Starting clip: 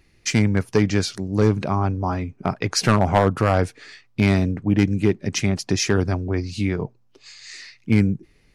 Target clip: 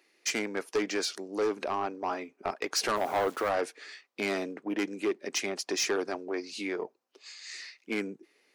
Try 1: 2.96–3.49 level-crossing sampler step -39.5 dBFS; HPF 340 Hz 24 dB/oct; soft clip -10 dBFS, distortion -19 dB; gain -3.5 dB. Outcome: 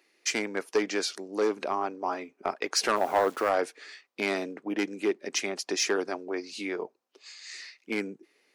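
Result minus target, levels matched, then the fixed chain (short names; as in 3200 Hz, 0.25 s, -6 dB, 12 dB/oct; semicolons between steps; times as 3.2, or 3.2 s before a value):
soft clip: distortion -9 dB
2.96–3.49 level-crossing sampler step -39.5 dBFS; HPF 340 Hz 24 dB/oct; soft clip -18.5 dBFS, distortion -10 dB; gain -3.5 dB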